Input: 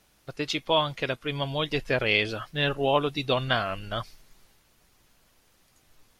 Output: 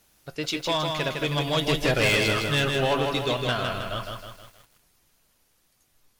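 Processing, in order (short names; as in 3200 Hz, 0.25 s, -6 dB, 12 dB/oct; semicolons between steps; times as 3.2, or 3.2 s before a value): Doppler pass-by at 2.04, 10 m/s, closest 4.6 m; high shelf 6400 Hz +8 dB; in parallel at 0 dB: compressor, threshold -35 dBFS, peak gain reduction 16.5 dB; on the sum: resonator 77 Hz, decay 0.2 s, harmonics all, mix 40%; soft clip -26.5 dBFS, distortion -8 dB; lo-fi delay 0.158 s, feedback 55%, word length 10-bit, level -4 dB; gain +8 dB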